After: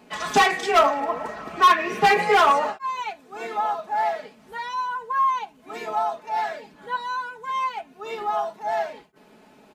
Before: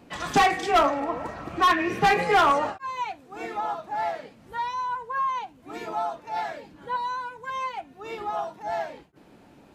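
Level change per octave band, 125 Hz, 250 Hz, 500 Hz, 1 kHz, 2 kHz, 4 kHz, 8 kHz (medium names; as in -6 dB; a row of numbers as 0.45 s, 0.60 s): -3.5 dB, -3.0 dB, +3.0 dB, +3.0 dB, +3.0 dB, +3.5 dB, no reading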